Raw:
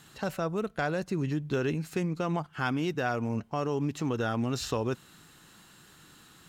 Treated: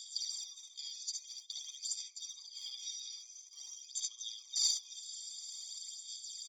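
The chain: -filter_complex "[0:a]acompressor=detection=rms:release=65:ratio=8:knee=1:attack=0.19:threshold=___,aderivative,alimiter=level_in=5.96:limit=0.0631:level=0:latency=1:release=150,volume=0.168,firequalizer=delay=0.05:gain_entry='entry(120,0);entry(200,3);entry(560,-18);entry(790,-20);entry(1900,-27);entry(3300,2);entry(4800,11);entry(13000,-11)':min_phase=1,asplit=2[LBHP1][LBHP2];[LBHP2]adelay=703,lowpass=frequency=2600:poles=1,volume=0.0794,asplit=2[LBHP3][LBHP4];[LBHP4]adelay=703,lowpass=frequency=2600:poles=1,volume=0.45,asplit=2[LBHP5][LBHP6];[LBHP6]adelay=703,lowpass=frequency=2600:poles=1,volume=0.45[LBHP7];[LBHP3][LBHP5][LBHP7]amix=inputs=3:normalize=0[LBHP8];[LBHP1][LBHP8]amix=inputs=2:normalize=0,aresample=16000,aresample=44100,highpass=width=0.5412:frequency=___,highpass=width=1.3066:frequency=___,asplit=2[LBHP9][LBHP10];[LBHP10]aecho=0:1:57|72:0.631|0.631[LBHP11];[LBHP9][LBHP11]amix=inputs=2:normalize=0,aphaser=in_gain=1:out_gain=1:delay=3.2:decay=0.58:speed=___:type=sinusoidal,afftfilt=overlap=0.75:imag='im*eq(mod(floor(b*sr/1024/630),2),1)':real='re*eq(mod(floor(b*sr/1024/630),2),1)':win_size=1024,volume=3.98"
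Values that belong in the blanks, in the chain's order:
0.0251, 1500, 1500, 0.49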